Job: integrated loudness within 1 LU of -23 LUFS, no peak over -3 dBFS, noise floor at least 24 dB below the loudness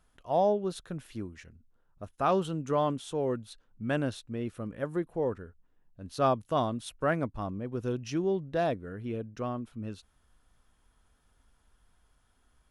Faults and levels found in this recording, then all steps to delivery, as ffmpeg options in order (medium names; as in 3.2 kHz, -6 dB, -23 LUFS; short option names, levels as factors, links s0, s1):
loudness -32.0 LUFS; peak level -15.0 dBFS; loudness target -23.0 LUFS
-> -af "volume=2.82"